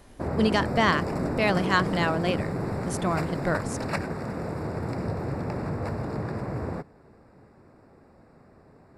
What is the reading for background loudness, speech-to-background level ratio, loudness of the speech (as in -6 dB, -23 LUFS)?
-31.0 LUFS, 4.5 dB, -26.5 LUFS